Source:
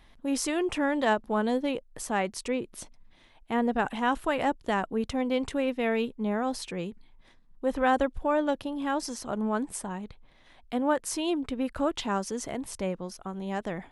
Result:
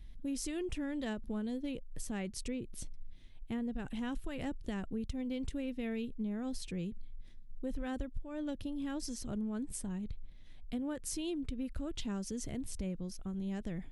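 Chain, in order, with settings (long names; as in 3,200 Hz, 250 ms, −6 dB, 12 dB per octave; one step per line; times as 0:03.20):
guitar amp tone stack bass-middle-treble 10-0-1
downward compressor 6 to 1, threshold −50 dBFS, peak gain reduction 15 dB
level +15.5 dB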